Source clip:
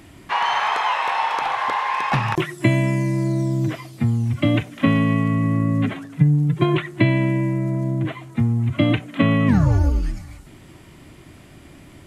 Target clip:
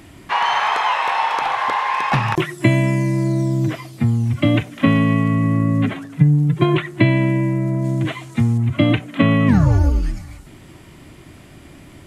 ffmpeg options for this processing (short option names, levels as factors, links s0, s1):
-filter_complex "[0:a]asettb=1/sr,asplit=3[s0][s1][s2];[s0]atrim=end=7.844[s3];[s1]atrim=start=7.84:end=8.58,asetpts=PTS-STARTPTS,afade=t=in:d=0.004:c=qsin,afade=t=out:st=0.736:d=0.004:c=qsin,equalizer=f=6500:w=0.44:g=10[s4];[s2]atrim=start=8.576[s5];[s3][s4]acrossfade=d=0.004:c1=hsin:c2=qsin[s6];[s6][s5]acrossfade=d=0.004:c1=qsin:c2=hsin,volume=1.33"